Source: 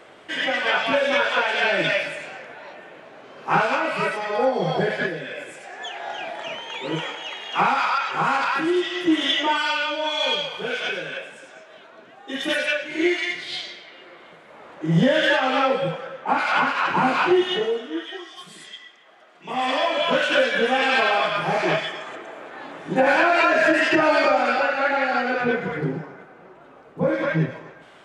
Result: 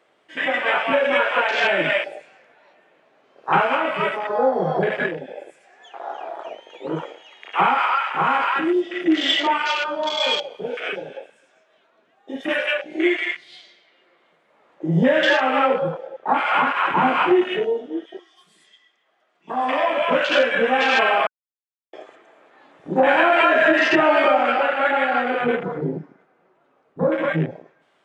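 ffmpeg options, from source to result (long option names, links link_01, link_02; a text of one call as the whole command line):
ffmpeg -i in.wav -filter_complex "[0:a]asplit=3[link_01][link_02][link_03];[link_01]atrim=end=21.27,asetpts=PTS-STARTPTS,afade=type=out:start_time=21.266:duration=0.004:curve=hsin[link_04];[link_02]atrim=start=21.27:end=21.93,asetpts=PTS-STARTPTS,volume=0[link_05];[link_03]atrim=start=21.93,asetpts=PTS-STARTPTS,afade=type=in:duration=0.004:curve=hsin[link_06];[link_04][link_05][link_06]concat=n=3:v=0:a=1,bandreject=frequency=1500:width=30,afwtdn=0.0447,lowshelf=frequency=100:gain=-11.5,volume=2.5dB" out.wav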